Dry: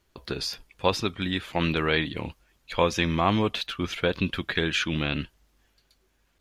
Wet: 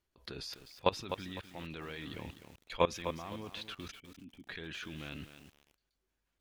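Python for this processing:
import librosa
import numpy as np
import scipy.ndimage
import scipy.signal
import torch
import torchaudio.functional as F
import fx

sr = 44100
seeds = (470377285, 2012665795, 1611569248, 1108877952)

y = fx.level_steps(x, sr, step_db=20)
y = fx.formant_cascade(y, sr, vowel='i', at=(3.9, 4.47), fade=0.02)
y = fx.echo_crushed(y, sr, ms=253, feedback_pct=35, bits=8, wet_db=-9.0)
y = F.gain(torch.from_numpy(y), -4.0).numpy()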